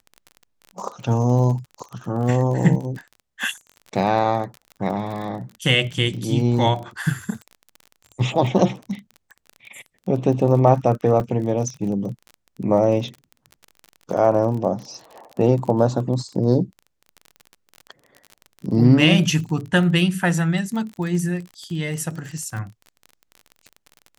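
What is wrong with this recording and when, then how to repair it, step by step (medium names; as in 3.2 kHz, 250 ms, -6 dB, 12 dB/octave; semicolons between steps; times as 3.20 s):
crackle 30 per s -30 dBFS
11.20 s: dropout 4.1 ms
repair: de-click; interpolate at 11.20 s, 4.1 ms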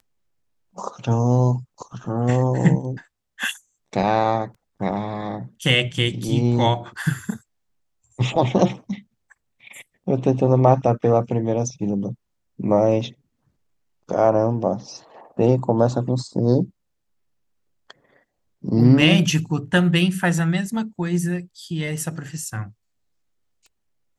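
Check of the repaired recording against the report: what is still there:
nothing left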